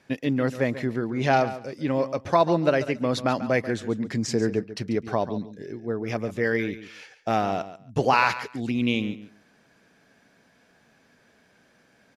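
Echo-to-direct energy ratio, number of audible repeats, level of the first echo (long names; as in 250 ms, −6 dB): −13.5 dB, 2, −13.5 dB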